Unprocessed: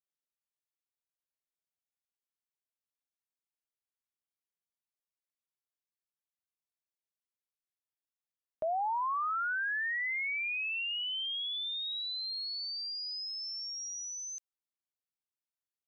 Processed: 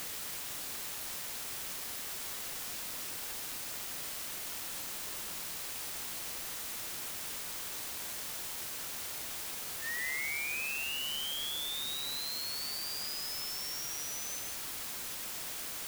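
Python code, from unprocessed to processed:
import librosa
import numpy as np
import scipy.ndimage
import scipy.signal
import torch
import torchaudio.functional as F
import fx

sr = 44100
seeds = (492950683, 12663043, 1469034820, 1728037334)

y = fx.brickwall_highpass(x, sr, low_hz=1800.0)
y = y + 10.0 ** (-3.5 / 20.0) * np.pad(y, (int(151 * sr / 1000.0), 0))[:len(y)]
y = fx.quant_dither(y, sr, seeds[0], bits=6, dither='triangular')
y = y * 10.0 ** (-4.5 / 20.0)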